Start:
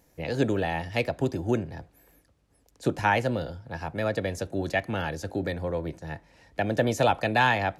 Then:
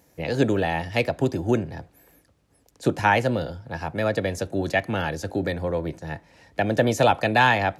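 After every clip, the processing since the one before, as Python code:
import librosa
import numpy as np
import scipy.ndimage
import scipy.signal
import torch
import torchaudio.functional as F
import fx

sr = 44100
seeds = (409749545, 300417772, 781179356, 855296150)

y = scipy.signal.sosfilt(scipy.signal.butter(2, 67.0, 'highpass', fs=sr, output='sos'), x)
y = F.gain(torch.from_numpy(y), 4.0).numpy()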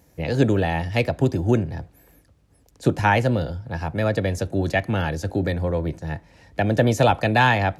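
y = fx.low_shelf(x, sr, hz=140.0, db=10.5)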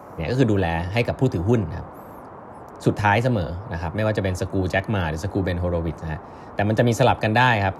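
y = fx.dmg_noise_band(x, sr, seeds[0], low_hz=72.0, high_hz=1100.0, level_db=-40.0)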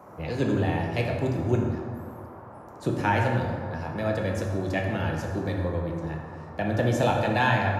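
y = fx.rev_plate(x, sr, seeds[1], rt60_s=2.0, hf_ratio=0.5, predelay_ms=0, drr_db=0.0)
y = F.gain(torch.from_numpy(y), -8.0).numpy()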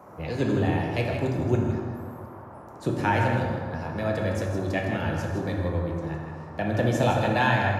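y = x + 10.0 ** (-8.5 / 20.0) * np.pad(x, (int(160 * sr / 1000.0), 0))[:len(x)]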